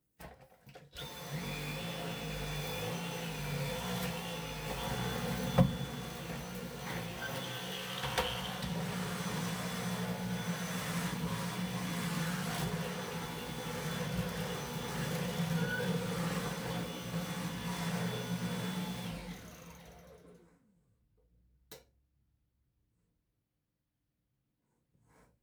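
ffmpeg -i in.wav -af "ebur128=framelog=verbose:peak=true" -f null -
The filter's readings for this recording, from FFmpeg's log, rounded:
Integrated loudness:
  I:         -37.5 LUFS
  Threshold: -48.0 LUFS
Loudness range:
  LRA:         4.5 LU
  Threshold: -58.2 LUFS
  LRA low:   -40.8 LUFS
  LRA high:  -36.3 LUFS
True peak:
  Peak:      -13.1 dBFS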